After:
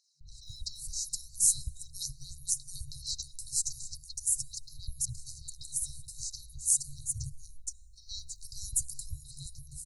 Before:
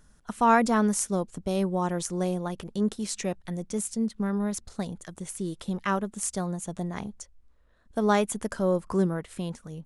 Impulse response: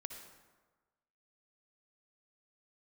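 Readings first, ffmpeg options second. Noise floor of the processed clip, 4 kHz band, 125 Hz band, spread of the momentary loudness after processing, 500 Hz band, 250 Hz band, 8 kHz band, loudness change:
-53 dBFS, +1.5 dB, -12.0 dB, 17 LU, under -40 dB, under -30 dB, +5.5 dB, -5.0 dB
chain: -filter_complex "[0:a]acrossover=split=1100|5500[s0][s1][s2];[s0]adelay=210[s3];[s2]adelay=470[s4];[s3][s1][s4]amix=inputs=3:normalize=0,asplit=2[s5][s6];[1:a]atrim=start_sample=2205[s7];[s6][s7]afir=irnorm=-1:irlink=0,volume=0.188[s8];[s5][s8]amix=inputs=2:normalize=0,aphaser=in_gain=1:out_gain=1:delay=2.5:decay=0.34:speed=0.42:type=triangular,afftfilt=real='re*(1-between(b*sr/4096,150,3800))':imag='im*(1-between(b*sr/4096,150,3800))':win_size=4096:overlap=0.75,volume=1.88"

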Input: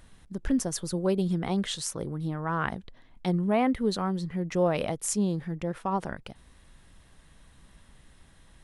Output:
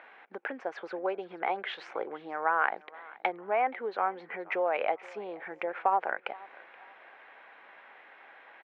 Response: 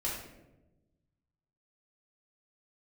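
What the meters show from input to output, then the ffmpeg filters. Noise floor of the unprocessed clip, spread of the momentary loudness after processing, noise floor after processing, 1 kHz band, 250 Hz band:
-57 dBFS, 24 LU, -56 dBFS, +4.0 dB, -17.5 dB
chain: -af "acompressor=threshold=0.02:ratio=5,highpass=f=430:w=0.5412,highpass=f=430:w=1.3066,equalizer=f=790:t=q:w=4:g=8,equalizer=f=1500:t=q:w=4:g=6,equalizer=f=2300:t=q:w=4:g=8,lowpass=f=2500:w=0.5412,lowpass=f=2500:w=1.3066,aecho=1:1:476|952|1428:0.0794|0.0286|0.0103,volume=2.51"

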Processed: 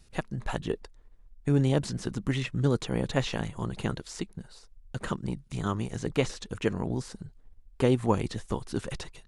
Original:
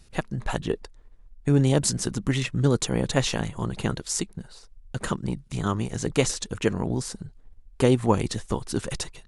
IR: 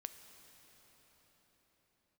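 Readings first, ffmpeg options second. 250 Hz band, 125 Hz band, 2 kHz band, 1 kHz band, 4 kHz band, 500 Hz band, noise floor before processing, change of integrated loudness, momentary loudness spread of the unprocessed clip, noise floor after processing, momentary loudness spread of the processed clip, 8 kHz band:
-4.0 dB, -4.0 dB, -4.0 dB, -4.0 dB, -7.0 dB, -4.0 dB, -53 dBFS, -4.5 dB, 11 LU, -57 dBFS, 13 LU, -14.0 dB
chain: -filter_complex "[0:a]acrossover=split=4200[s0][s1];[s1]acompressor=threshold=0.00794:ratio=4:attack=1:release=60[s2];[s0][s2]amix=inputs=2:normalize=0,volume=0.631"

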